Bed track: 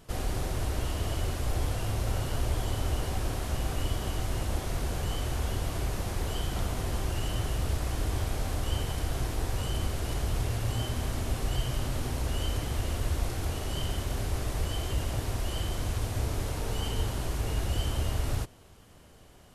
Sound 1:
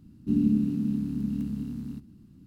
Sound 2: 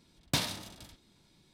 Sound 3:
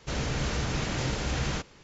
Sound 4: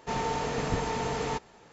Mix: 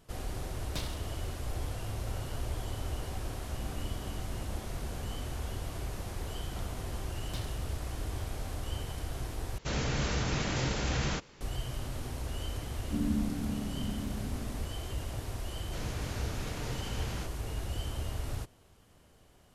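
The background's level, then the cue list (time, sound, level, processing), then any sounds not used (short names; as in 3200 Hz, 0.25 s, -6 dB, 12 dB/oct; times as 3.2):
bed track -6.5 dB
0.42 add 2 -9 dB + vocal rider
3.32 add 1 -17 dB + compressor, threshold -31 dBFS
7 add 2 -15.5 dB
9.58 replace with 3 -1.5 dB
12.64 add 1 -8.5 dB
15.65 add 3 -10.5 dB
not used: 4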